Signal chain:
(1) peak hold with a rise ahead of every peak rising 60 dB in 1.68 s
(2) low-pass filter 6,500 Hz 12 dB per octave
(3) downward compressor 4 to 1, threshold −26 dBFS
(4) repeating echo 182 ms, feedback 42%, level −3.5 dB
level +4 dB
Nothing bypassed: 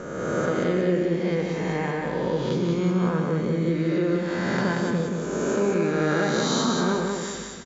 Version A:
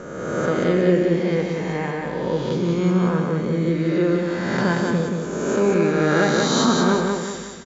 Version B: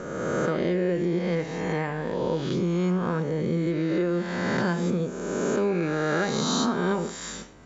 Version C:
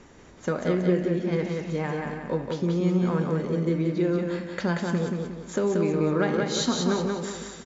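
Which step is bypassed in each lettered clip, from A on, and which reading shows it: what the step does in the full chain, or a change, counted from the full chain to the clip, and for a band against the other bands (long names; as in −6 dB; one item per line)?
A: 3, average gain reduction 2.5 dB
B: 4, echo-to-direct ratio −2.5 dB to none audible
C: 1, 2 kHz band −3.0 dB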